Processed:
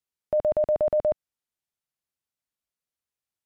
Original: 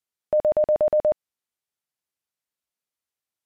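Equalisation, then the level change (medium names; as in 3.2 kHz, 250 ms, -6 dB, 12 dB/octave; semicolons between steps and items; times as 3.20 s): bass shelf 160 Hz +7.5 dB; -3.5 dB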